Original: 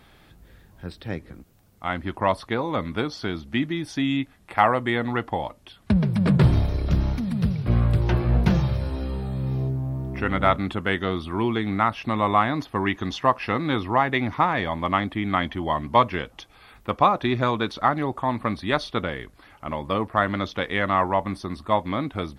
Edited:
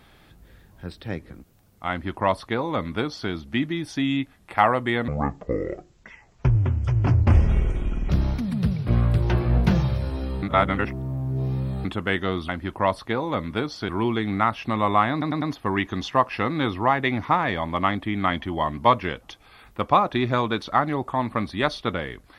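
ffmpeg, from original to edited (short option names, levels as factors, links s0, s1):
-filter_complex "[0:a]asplit=10[s0][s1][s2][s3][s4][s5][s6][s7][s8][s9];[s0]atrim=end=5.084[s10];[s1]atrim=start=5.08:end=6.89,asetpts=PTS-STARTPTS,asetrate=26460,aresample=44100[s11];[s2]atrim=start=6.886:end=9.222[s12];[s3]atrim=start=9.218:end=10.642,asetpts=PTS-STARTPTS,areverse[s13];[s4]atrim=start=10.638:end=11.282[s14];[s5]atrim=start=1.898:end=3.302[s15];[s6]atrim=start=11.278:end=12.612[s16];[s7]atrim=start=12.508:end=12.612[s17];[s8]atrim=start=12.508:end=12.612[s18];[s9]atrim=start=12.508[s19];[s10][s11]acrossfade=d=0.004:c1=hsin:c2=hsin[s20];[s20][s12]acrossfade=d=0.004:c1=hsin:c2=hsin[s21];[s21][s13]acrossfade=d=0.004:c1=hsin:c2=hsin[s22];[s22][s14]acrossfade=d=0.004:c1=hsin:c2=hsin[s23];[s23][s15]acrossfade=d=0.004:c1=hsin:c2=hsin[s24];[s24][s16]acrossfade=d=0.004:c1=hsin:c2=hsin[s25];[s25][s17]acrossfade=d=0.004:c1=hsin:c2=hsin[s26];[s26][s18]acrossfade=d=0.004:c1=hsin:c2=hsin[s27];[s27][s19]acrossfade=d=0.004:c1=hsin:c2=hsin"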